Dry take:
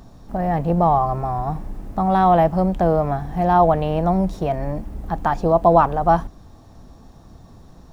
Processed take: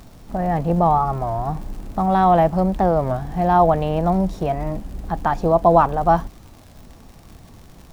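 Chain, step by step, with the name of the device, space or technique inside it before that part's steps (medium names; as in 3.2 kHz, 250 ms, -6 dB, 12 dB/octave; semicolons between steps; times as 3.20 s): warped LP (warped record 33 1/3 rpm, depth 160 cents; crackle 100 per s -35 dBFS; pink noise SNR 36 dB)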